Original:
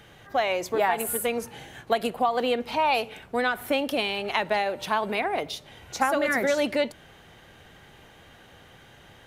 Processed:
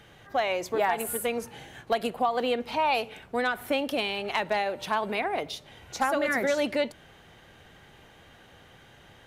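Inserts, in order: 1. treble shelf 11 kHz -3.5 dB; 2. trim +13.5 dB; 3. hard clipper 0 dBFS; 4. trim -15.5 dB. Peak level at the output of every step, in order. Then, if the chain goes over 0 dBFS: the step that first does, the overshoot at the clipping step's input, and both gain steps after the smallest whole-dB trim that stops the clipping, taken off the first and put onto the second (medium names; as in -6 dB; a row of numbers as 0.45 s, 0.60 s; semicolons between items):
-9.0 dBFS, +4.5 dBFS, 0.0 dBFS, -15.5 dBFS; step 2, 4.5 dB; step 2 +8.5 dB, step 4 -10.5 dB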